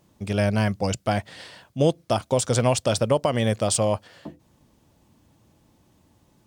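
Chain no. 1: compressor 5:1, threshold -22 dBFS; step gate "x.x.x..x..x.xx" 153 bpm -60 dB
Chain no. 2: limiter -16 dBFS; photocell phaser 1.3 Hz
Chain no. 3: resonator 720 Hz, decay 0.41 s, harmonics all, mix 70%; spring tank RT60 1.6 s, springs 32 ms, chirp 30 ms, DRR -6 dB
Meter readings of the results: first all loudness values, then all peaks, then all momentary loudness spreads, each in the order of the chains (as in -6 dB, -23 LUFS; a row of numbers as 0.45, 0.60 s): -31.5, -30.0, -28.0 LUFS; -12.0, -14.5, -13.0 dBFS; 11, 17, 12 LU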